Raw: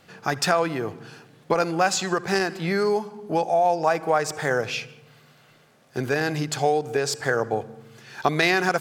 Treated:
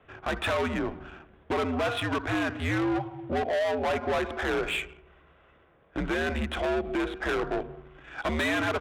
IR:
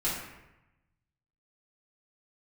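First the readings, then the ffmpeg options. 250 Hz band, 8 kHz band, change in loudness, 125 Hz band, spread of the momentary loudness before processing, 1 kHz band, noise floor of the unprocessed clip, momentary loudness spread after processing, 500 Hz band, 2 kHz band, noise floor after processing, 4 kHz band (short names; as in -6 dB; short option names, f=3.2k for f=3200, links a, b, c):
-1.5 dB, -15.5 dB, -5.5 dB, -4.5 dB, 11 LU, -8.0 dB, -56 dBFS, 9 LU, -6.0 dB, -4.5 dB, -60 dBFS, -5.0 dB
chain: -filter_complex "[0:a]afreqshift=-79,bandreject=f=237.5:t=h:w=4,bandreject=f=475:t=h:w=4,bandreject=f=712.5:t=h:w=4,bandreject=f=950:t=h:w=4,bandreject=f=1.1875k:t=h:w=4,bandreject=f=1.425k:t=h:w=4,asplit=2[a][b];[b]acrusher=bits=6:mix=0:aa=0.000001,volume=-12dB[c];[a][c]amix=inputs=2:normalize=0,lowshelf=f=290:g=-5,aresample=8000,volume=24.5dB,asoftclip=hard,volume=-24.5dB,aresample=44100,adynamicsmooth=sensitivity=7.5:basefreq=2.1k"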